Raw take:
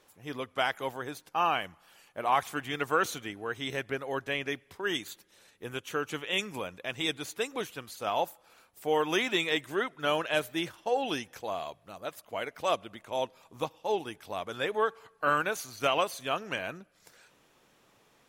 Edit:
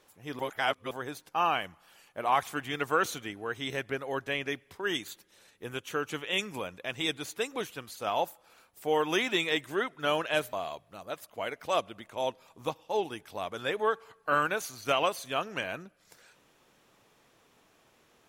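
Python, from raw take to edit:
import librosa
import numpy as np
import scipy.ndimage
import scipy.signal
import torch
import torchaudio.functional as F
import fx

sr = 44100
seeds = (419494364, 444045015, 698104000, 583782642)

y = fx.edit(x, sr, fx.reverse_span(start_s=0.39, length_s=0.52),
    fx.cut(start_s=10.53, length_s=0.95), tone=tone)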